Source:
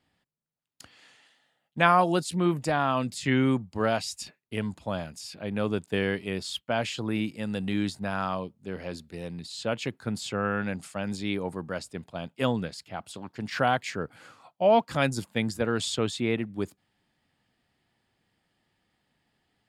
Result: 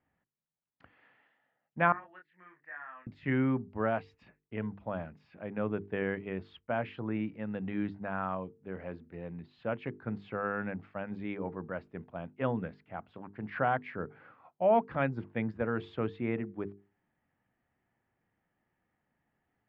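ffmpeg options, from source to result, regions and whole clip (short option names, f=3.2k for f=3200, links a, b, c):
-filter_complex "[0:a]asettb=1/sr,asplit=3[a][b][c];[a]atrim=end=1.924[d];[b]atrim=start=1.92:end=3.07,asetpts=PTS-STARTPTS,afade=t=in:d=0.004:c=qsin,afade=t=out:st=1.146:d=0.004:c=qsin,bandpass=f=1.8k:t=q:w=8.4,asplit=2[e][f];[f]adelay=27,volume=-4dB[g];[e][g]amix=inputs=2:normalize=0,atrim=end_sample=50715[h];[c]atrim=start=3.066[i];[d][h]acrossfade=d=0.004:c1=hsin:c2=qsin[j];[j][i]acrossfade=d=0.004:c1=qsin:c2=hsin,lowpass=f=2.1k:w=0.5412,lowpass=f=2.1k:w=1.3066,bandreject=f=50:t=h:w=6,bandreject=f=100:t=h:w=6,bandreject=f=150:t=h:w=6,bandreject=f=200:t=h:w=6,bandreject=f=250:t=h:w=6,bandreject=f=300:t=h:w=6,bandreject=f=350:t=h:w=6,bandreject=f=400:t=h:w=6,bandreject=f=450:t=h:w=6,volume=-4.5dB"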